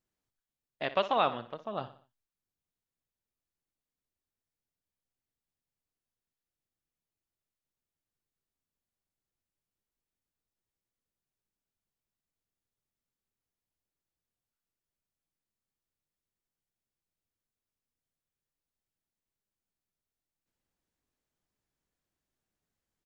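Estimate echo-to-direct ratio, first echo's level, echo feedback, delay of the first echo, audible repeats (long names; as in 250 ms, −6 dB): −12.5 dB, −13.5 dB, 43%, 60 ms, 3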